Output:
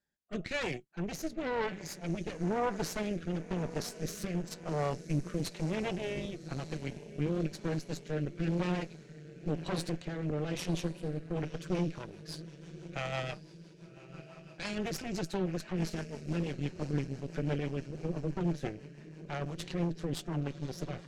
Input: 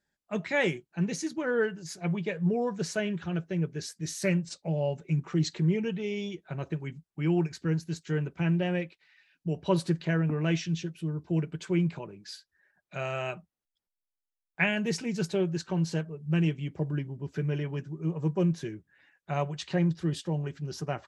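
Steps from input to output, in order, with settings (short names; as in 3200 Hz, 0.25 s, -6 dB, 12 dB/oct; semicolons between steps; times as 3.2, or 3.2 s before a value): limiter -23.5 dBFS, peak gain reduction 11.5 dB; diffused feedback echo 1.117 s, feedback 59%, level -13 dB; added harmonics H 4 -7 dB, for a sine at -21 dBFS; rotary speaker horn 1 Hz, later 6 Hz, at 11.16; gain -2.5 dB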